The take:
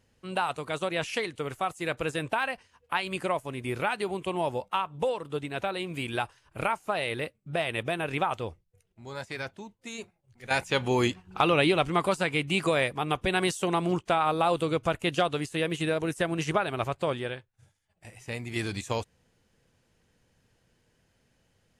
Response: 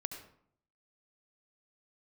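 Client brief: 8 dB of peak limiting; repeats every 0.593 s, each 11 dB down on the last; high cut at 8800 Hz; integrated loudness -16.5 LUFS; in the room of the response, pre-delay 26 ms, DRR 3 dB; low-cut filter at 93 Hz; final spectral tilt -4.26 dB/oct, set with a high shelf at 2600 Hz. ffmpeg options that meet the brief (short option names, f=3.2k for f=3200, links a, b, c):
-filter_complex "[0:a]highpass=93,lowpass=8.8k,highshelf=f=2.6k:g=-5,alimiter=limit=-18dB:level=0:latency=1,aecho=1:1:593|1186|1779:0.282|0.0789|0.0221,asplit=2[a][b];[1:a]atrim=start_sample=2205,adelay=26[c];[b][c]afir=irnorm=-1:irlink=0,volume=-2.5dB[d];[a][d]amix=inputs=2:normalize=0,volume=13dB"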